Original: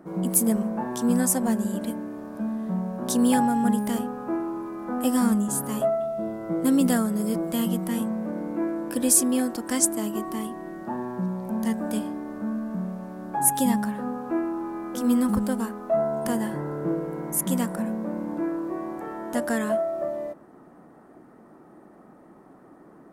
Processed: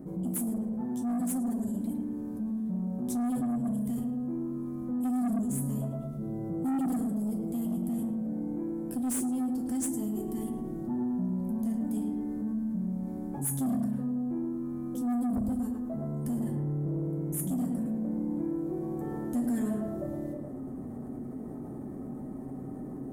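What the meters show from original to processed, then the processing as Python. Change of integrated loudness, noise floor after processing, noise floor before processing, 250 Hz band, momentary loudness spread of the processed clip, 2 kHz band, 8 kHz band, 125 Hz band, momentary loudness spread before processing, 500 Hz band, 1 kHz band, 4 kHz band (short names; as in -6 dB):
-7.0 dB, -40 dBFS, -51 dBFS, -4.5 dB, 10 LU, under -15 dB, -13.5 dB, -1.0 dB, 11 LU, -11.5 dB, -13.5 dB, under -15 dB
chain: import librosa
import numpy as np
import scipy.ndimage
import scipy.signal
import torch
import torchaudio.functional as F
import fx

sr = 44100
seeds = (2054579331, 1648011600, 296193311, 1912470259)

p1 = fx.curve_eq(x, sr, hz=(130.0, 1400.0, 7200.0), db=(0, -25, -10))
p2 = p1 + fx.echo_filtered(p1, sr, ms=109, feedback_pct=42, hz=1900.0, wet_db=-5.0, dry=0)
p3 = fx.rev_fdn(p2, sr, rt60_s=0.31, lf_ratio=0.85, hf_ratio=0.8, size_ms=23.0, drr_db=2.0)
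p4 = 10.0 ** (-24.5 / 20.0) * np.tanh(p3 / 10.0 ** (-24.5 / 20.0))
p5 = fx.notch(p4, sr, hz=2700.0, q=20.0)
p6 = fx.rider(p5, sr, range_db=10, speed_s=2.0)
p7 = fx.peak_eq(p6, sr, hz=4900.0, db=-6.5, octaves=1.3)
p8 = fx.env_flatten(p7, sr, amount_pct=50)
y = p8 * librosa.db_to_amplitude(-4.5)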